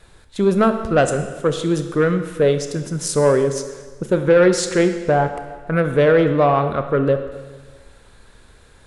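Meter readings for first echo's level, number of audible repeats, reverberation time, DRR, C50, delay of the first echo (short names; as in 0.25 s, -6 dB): none, none, 1.4 s, 7.5 dB, 9.0 dB, none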